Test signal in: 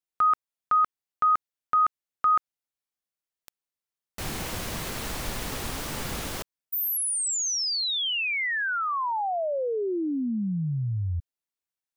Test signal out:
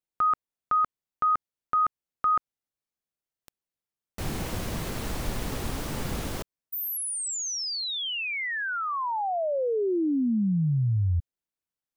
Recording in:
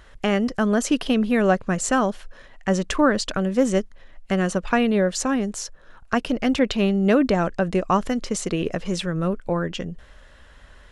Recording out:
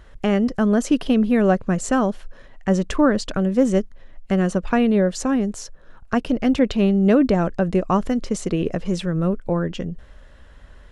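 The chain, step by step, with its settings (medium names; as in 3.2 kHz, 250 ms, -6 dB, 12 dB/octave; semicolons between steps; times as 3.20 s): tilt shelf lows +4 dB, about 690 Hz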